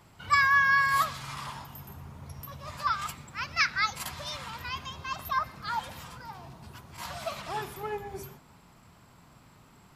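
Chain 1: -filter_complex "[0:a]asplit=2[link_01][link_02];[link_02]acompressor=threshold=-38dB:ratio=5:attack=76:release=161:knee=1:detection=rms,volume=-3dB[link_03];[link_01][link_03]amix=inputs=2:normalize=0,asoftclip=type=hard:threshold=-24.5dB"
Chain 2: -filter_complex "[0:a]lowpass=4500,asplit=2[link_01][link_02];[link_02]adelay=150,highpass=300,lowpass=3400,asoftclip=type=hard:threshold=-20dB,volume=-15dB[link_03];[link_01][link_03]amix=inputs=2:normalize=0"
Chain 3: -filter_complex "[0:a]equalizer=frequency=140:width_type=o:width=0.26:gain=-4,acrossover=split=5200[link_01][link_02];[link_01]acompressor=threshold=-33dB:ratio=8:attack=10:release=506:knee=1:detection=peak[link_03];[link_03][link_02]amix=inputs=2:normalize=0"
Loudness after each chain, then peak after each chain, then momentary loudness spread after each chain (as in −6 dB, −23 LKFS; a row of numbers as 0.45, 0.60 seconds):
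−31.5, −29.0, −38.5 LKFS; −24.5, −11.5, −20.0 dBFS; 14, 23, 23 LU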